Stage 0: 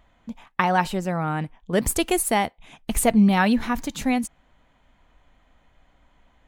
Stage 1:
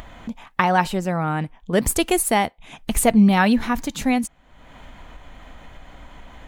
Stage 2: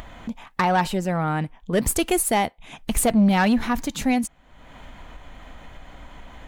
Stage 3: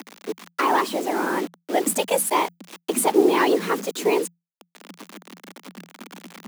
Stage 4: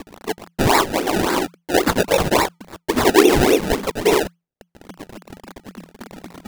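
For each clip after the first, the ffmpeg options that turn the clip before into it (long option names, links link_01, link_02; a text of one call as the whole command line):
ffmpeg -i in.wav -af "acompressor=mode=upward:threshold=-29dB:ratio=2.5,volume=2.5dB" out.wav
ffmpeg -i in.wav -af "asoftclip=type=tanh:threshold=-12dB" out.wav
ffmpeg -i in.wav -af "afftfilt=real='hypot(re,im)*cos(2*PI*random(0))':imag='hypot(re,im)*sin(2*PI*random(1))':win_size=512:overlap=0.75,acrusher=bits=6:mix=0:aa=0.000001,afreqshift=170,volume=5.5dB" out.wav
ffmpeg -i in.wav -af "acrusher=samples=28:mix=1:aa=0.000001:lfo=1:lforange=28:lforate=3.6,volume=4.5dB" out.wav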